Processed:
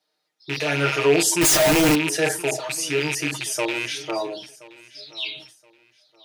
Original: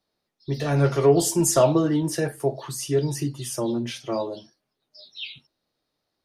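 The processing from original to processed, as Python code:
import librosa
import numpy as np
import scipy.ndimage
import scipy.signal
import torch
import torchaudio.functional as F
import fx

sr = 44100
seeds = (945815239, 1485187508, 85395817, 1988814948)

y = fx.rattle_buzz(x, sr, strikes_db=-30.0, level_db=-20.0)
y = fx.weighting(y, sr, curve='A')
y = fx.echo_feedback(y, sr, ms=1024, feedback_pct=28, wet_db=-21)
y = fx.schmitt(y, sr, flips_db=-33.5, at=(1.41, 1.95))
y = fx.high_shelf(y, sr, hz=8100.0, db=4.0)
y = fx.notch(y, sr, hz=1100.0, q=13.0)
y = y + 0.86 * np.pad(y, (int(6.5 * sr / 1000.0), 0))[:len(y)]
y = fx.sustainer(y, sr, db_per_s=92.0)
y = F.gain(torch.from_numpy(y), 2.0).numpy()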